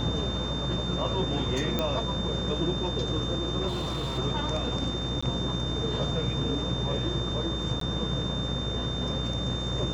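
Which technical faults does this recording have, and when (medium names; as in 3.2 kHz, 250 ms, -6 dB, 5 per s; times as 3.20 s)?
buzz 60 Hz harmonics 31 -34 dBFS
whine 3.6 kHz -34 dBFS
1.79 s: pop -13 dBFS
3.67–4.19 s: clipped -27 dBFS
5.21–5.22 s: dropout 15 ms
7.80–7.81 s: dropout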